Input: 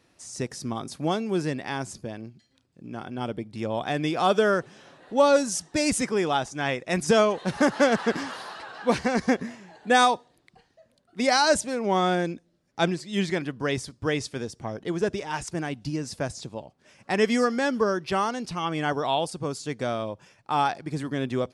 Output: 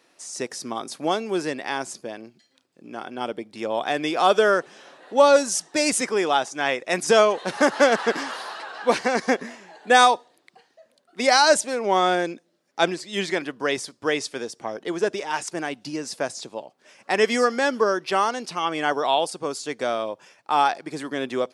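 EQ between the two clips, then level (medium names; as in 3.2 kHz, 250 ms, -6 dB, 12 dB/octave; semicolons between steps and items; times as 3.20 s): high-pass 350 Hz 12 dB/octave; +4.5 dB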